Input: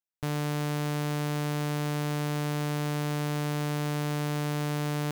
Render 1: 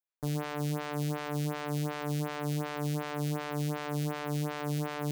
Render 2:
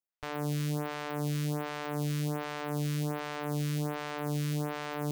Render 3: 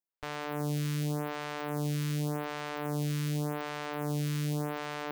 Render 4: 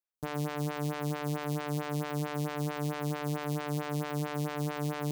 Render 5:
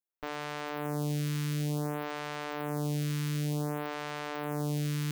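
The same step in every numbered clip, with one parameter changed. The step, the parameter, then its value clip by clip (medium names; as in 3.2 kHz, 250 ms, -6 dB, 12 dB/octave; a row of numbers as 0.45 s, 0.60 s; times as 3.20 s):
lamp-driven phase shifter, rate: 2.7 Hz, 1.3 Hz, 0.87 Hz, 4.5 Hz, 0.55 Hz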